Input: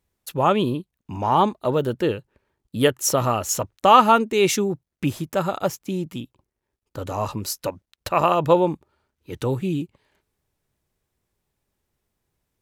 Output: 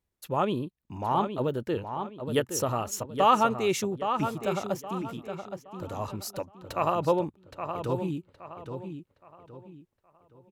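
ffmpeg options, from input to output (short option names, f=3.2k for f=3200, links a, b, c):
-filter_complex "[0:a]highshelf=f=2.4k:g=-2.5,atempo=1.2,asplit=2[a][b];[b]adelay=819,lowpass=f=4.2k:p=1,volume=-7.5dB,asplit=2[c][d];[d]adelay=819,lowpass=f=4.2k:p=1,volume=0.34,asplit=2[e][f];[f]adelay=819,lowpass=f=4.2k:p=1,volume=0.34,asplit=2[g][h];[h]adelay=819,lowpass=f=4.2k:p=1,volume=0.34[i];[a][c][e][g][i]amix=inputs=5:normalize=0,volume=-7.5dB"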